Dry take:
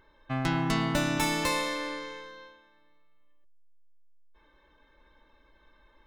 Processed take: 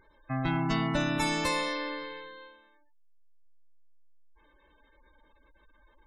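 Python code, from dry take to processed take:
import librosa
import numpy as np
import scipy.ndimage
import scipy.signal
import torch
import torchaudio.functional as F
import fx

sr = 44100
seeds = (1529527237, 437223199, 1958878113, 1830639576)

y = fx.spec_gate(x, sr, threshold_db=-20, keep='strong')
y = 10.0 ** (-17.0 / 20.0) * np.tanh(y / 10.0 ** (-17.0 / 20.0))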